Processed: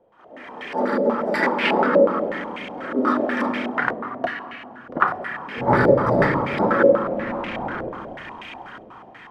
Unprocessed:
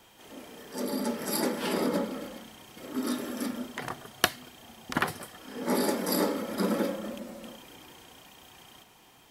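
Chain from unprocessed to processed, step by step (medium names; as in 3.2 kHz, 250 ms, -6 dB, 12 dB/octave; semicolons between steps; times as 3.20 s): 5.57–6.47 s: octave divider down 1 oct, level +3 dB; tilt EQ +2 dB/octave; level rider gain up to 13 dB; 7.03–7.89 s: Schmitt trigger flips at -32 dBFS; on a send at -5.5 dB: reverberation RT60 2.8 s, pre-delay 6 ms; on the sum: step-sequenced low-pass 8.2 Hz 540–2300 Hz; trim -2 dB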